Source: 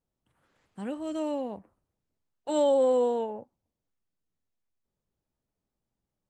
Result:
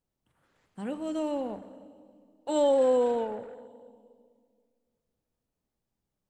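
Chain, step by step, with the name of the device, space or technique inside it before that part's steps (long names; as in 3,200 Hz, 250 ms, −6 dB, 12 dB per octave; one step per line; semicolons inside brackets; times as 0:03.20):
saturated reverb return (on a send at −10 dB: convolution reverb RT60 2.0 s, pre-delay 14 ms + soft clipping −29.5 dBFS, distortion −6 dB)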